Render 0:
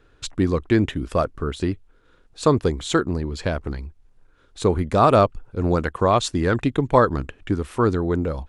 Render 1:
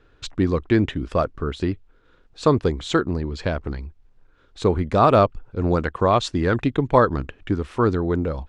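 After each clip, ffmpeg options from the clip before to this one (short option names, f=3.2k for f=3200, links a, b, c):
-af "lowpass=5.5k"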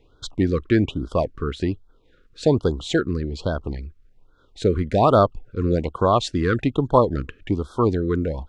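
-af "afftfilt=real='re*(1-between(b*sr/1024,720*pow(2300/720,0.5+0.5*sin(2*PI*1.2*pts/sr))/1.41,720*pow(2300/720,0.5+0.5*sin(2*PI*1.2*pts/sr))*1.41))':imag='im*(1-between(b*sr/1024,720*pow(2300/720,0.5+0.5*sin(2*PI*1.2*pts/sr))/1.41,720*pow(2300/720,0.5+0.5*sin(2*PI*1.2*pts/sr))*1.41))':win_size=1024:overlap=0.75"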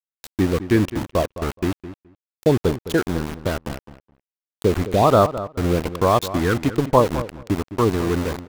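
-filter_complex "[0:a]aeval=exprs='val(0)*gte(abs(val(0)),0.0631)':c=same,asplit=2[a][b];[b]adelay=211,lowpass=f=2.3k:p=1,volume=-13dB,asplit=2[c][d];[d]adelay=211,lowpass=f=2.3k:p=1,volume=0.15[e];[a][c][e]amix=inputs=3:normalize=0,volume=1dB"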